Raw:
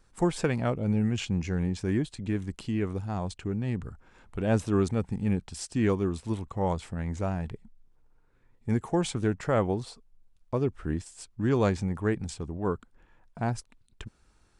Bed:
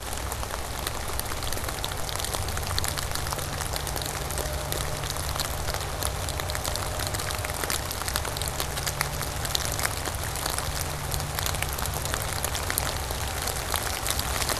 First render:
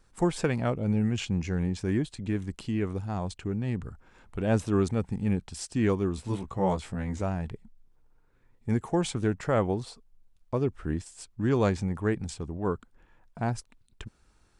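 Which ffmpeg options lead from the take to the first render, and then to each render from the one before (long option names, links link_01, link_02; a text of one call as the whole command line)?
ffmpeg -i in.wav -filter_complex "[0:a]asettb=1/sr,asplit=3[link_01][link_02][link_03];[link_01]atrim=end=6.164[link_04];[link_02]atrim=start=6.16:end=7.22,asetpts=PTS-STARTPTS,afade=type=in:duration=0.004:curve=qsin,afade=type=out:start_time=1.056:duration=0.004:curve=qsin,asplit=2[link_05][link_06];[link_06]adelay=16,volume=-3dB[link_07];[link_05][link_07]amix=inputs=2:normalize=0,atrim=end_sample=46746[link_08];[link_03]atrim=start=7.216[link_09];[link_04][link_08]acrossfade=duration=0.004:curve1=hsin:curve2=qsin[link_10];[link_10][link_09]acrossfade=duration=0.004:curve1=qsin:curve2=hsin" out.wav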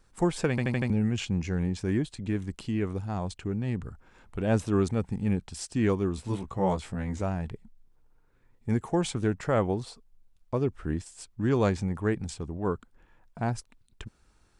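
ffmpeg -i in.wav -filter_complex "[0:a]asplit=6[link_01][link_02][link_03][link_04][link_05][link_06];[link_01]atrim=end=0.582[link_07];[link_02]atrim=start=0.498:end=0.582[link_08];[link_03]atrim=start=0.498:end=0.582[link_09];[link_04]atrim=start=0.498:end=0.582[link_10];[link_05]atrim=start=0.498:end=0.582[link_11];[link_06]atrim=start=0.898[link_12];[link_07][link_08]acrossfade=duration=0.004:curve1=hsin:curve2=hsin[link_13];[link_13][link_09]acrossfade=duration=0.004:curve1=hsin:curve2=hsin[link_14];[link_14][link_10]acrossfade=duration=0.004:curve1=hsin:curve2=hsin[link_15];[link_15][link_11]acrossfade=duration=0.004:curve1=hsin:curve2=hsin[link_16];[link_16][link_12]acrossfade=duration=0.004:curve1=hsin:curve2=hsin" out.wav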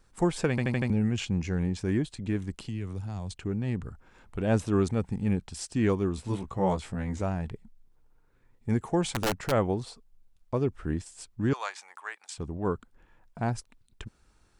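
ffmpeg -i in.wav -filter_complex "[0:a]asettb=1/sr,asplit=3[link_01][link_02][link_03];[link_01]atrim=end=2.644[link_04];[link_02]atrim=start=2.64:end=3.36,asetpts=PTS-STARTPTS,afade=type=in:duration=0.004:curve=qsin,afade=type=out:start_time=0.716:duration=0.004:curve=qsin,acrossover=split=150|3000[link_05][link_06][link_07];[link_06]acompressor=threshold=-39dB:ratio=5:attack=3.2:release=140:knee=2.83:detection=peak[link_08];[link_05][link_08][link_07]amix=inputs=3:normalize=0[link_09];[link_03]atrim=start=3.356[link_10];[link_04][link_09]acrossfade=duration=0.004:curve1=hsin:curve2=qsin[link_11];[link_11][link_10]acrossfade=duration=0.004:curve1=qsin:curve2=hsin,asplit=3[link_12][link_13][link_14];[link_12]afade=type=out:start_time=9.04:duration=0.02[link_15];[link_13]aeval=exprs='(mod(10.6*val(0)+1,2)-1)/10.6':channel_layout=same,afade=type=in:start_time=9.04:duration=0.02,afade=type=out:start_time=9.5:duration=0.02[link_16];[link_14]afade=type=in:start_time=9.5:duration=0.02[link_17];[link_15][link_16][link_17]amix=inputs=3:normalize=0,asettb=1/sr,asplit=3[link_18][link_19][link_20];[link_18]atrim=end=11.534[link_21];[link_19]atrim=start=11.53:end=12.38,asetpts=PTS-STARTPTS,afade=type=in:duration=0.004:curve=qsin,afade=type=out:start_time=0.846:duration=0.004:curve=qsin,highpass=frequency=870:width=0.5412,highpass=frequency=870:width=1.3066[link_22];[link_20]atrim=start=12.376[link_23];[link_21][link_22]acrossfade=duration=0.004:curve1=hsin:curve2=qsin[link_24];[link_24][link_23]acrossfade=duration=0.004:curve1=qsin:curve2=hsin" out.wav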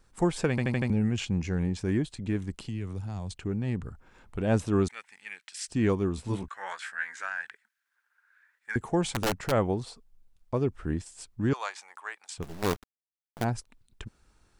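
ffmpeg -i in.wav -filter_complex "[0:a]asettb=1/sr,asplit=3[link_01][link_02][link_03];[link_01]atrim=end=4.884[link_04];[link_02]atrim=start=4.88:end=5.68,asetpts=PTS-STARTPTS,afade=type=in:duration=0.004:curve=qsin,afade=type=out:start_time=0.796:duration=0.004:curve=qsin,highpass=frequency=1900:width_type=q:width=2.3[link_05];[link_03]atrim=start=5.676[link_06];[link_04][link_05]acrossfade=duration=0.004:curve1=hsin:curve2=qsin[link_07];[link_07][link_06]acrossfade=duration=0.004:curve1=qsin:curve2=hsin,asettb=1/sr,asplit=3[link_08][link_09][link_10];[link_08]atrim=end=6.484[link_11];[link_09]atrim=start=6.48:end=8.76,asetpts=PTS-STARTPTS,afade=type=in:duration=0.004:curve=qsin,afade=type=out:start_time=2.276:duration=0.004:curve=qsin,highpass=frequency=1600:width_type=q:width=8.3[link_12];[link_10]atrim=start=8.756[link_13];[link_11][link_12]acrossfade=duration=0.004:curve1=hsin:curve2=qsin[link_14];[link_14][link_13]acrossfade=duration=0.004:curve1=qsin:curve2=hsin,asplit=3[link_15][link_16][link_17];[link_15]afade=type=out:start_time=12.42:duration=0.02[link_18];[link_16]acrusher=bits=5:dc=4:mix=0:aa=0.000001,afade=type=in:start_time=12.42:duration=0.02,afade=type=out:start_time=13.43:duration=0.02[link_19];[link_17]afade=type=in:start_time=13.43:duration=0.02[link_20];[link_18][link_19][link_20]amix=inputs=3:normalize=0" out.wav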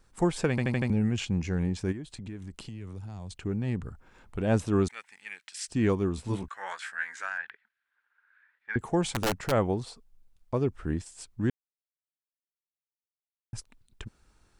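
ffmpeg -i in.wav -filter_complex "[0:a]asplit=3[link_01][link_02][link_03];[link_01]afade=type=out:start_time=1.91:duration=0.02[link_04];[link_02]acompressor=threshold=-37dB:ratio=4:attack=3.2:release=140:knee=1:detection=peak,afade=type=in:start_time=1.91:duration=0.02,afade=type=out:start_time=3.42:duration=0.02[link_05];[link_03]afade=type=in:start_time=3.42:duration=0.02[link_06];[link_04][link_05][link_06]amix=inputs=3:normalize=0,asettb=1/sr,asplit=3[link_07][link_08][link_09];[link_07]atrim=end=7.384[link_10];[link_08]atrim=start=7.38:end=8.79,asetpts=PTS-STARTPTS,afade=type=in:duration=0.004:curve=qsin,afade=type=out:start_time=1.406:duration=0.004:curve=qsin,lowpass=frequency=3800:width=0.5412,lowpass=frequency=3800:width=1.3066[link_11];[link_09]atrim=start=8.786[link_12];[link_10][link_11]acrossfade=duration=0.004:curve1=hsin:curve2=qsin[link_13];[link_13][link_12]acrossfade=duration=0.004:curve1=qsin:curve2=hsin,asplit=3[link_14][link_15][link_16];[link_14]atrim=end=11.5,asetpts=PTS-STARTPTS,afade=type=out:start_time=11.496:duration=0.004:curve=hsin[link_17];[link_15]atrim=start=11.5:end=13.53,asetpts=PTS-STARTPTS,volume=0[link_18];[link_16]atrim=start=13.53,asetpts=PTS-STARTPTS,afade=type=in:duration=0.004:curve=hsin[link_19];[link_17][link_18][link_19]concat=n=3:v=0:a=1" out.wav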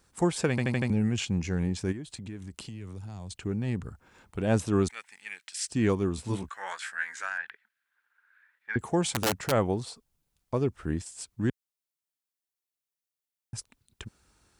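ffmpeg -i in.wav -af "highpass=57,highshelf=frequency=4400:gain=6" out.wav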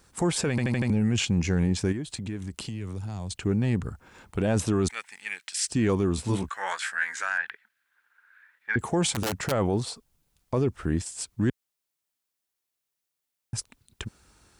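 ffmpeg -i in.wav -af "acontrast=58,alimiter=limit=-16.5dB:level=0:latency=1:release=23" out.wav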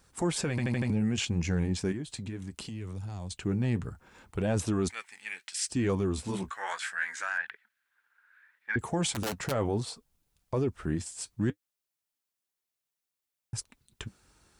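ffmpeg -i in.wav -af "flanger=delay=1.1:depth=7.3:regen=-60:speed=0.67:shape=triangular" out.wav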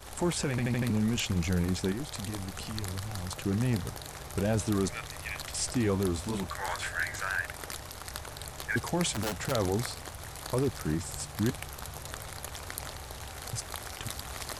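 ffmpeg -i in.wav -i bed.wav -filter_complex "[1:a]volume=-12dB[link_01];[0:a][link_01]amix=inputs=2:normalize=0" out.wav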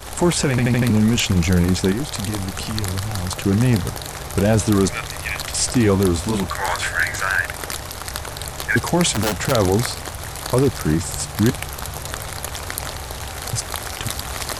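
ffmpeg -i in.wav -af "volume=12dB,alimiter=limit=-2dB:level=0:latency=1" out.wav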